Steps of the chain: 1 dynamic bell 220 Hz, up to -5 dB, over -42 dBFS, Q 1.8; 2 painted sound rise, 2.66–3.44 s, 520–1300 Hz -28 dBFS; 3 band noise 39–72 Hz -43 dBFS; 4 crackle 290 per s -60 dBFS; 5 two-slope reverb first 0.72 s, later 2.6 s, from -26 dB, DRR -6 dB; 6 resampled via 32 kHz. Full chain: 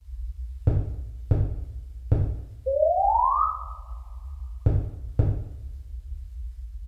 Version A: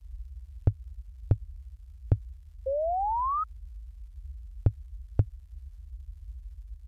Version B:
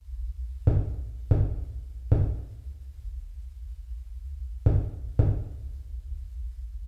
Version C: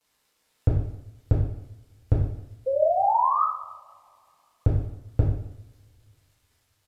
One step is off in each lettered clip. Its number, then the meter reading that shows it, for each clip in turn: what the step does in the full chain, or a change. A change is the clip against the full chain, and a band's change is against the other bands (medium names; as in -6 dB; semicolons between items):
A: 5, crest factor change +4.0 dB; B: 2, 1 kHz band -25.5 dB; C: 3, momentary loudness spread change -3 LU